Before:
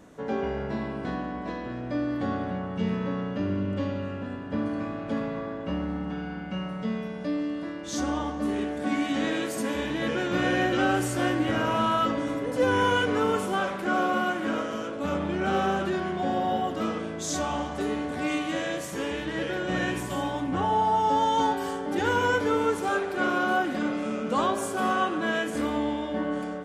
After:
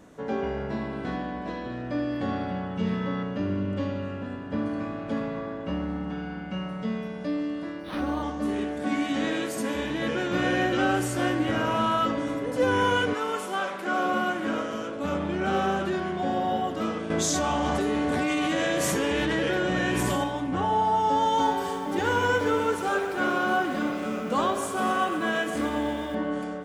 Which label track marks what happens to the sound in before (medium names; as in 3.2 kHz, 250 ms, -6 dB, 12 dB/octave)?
0.850000	3.230000	band-passed feedback delay 77 ms, feedback 68%, band-pass 2.5 kHz, level -4 dB
7.800000	8.230000	decimation joined by straight lines rate divided by 6×
13.130000	14.040000	high-pass 900 Hz -> 280 Hz 6 dB/octave
17.100000	20.240000	level flattener amount 100%
21.130000	26.150000	bit-crushed delay 124 ms, feedback 80%, word length 8-bit, level -13 dB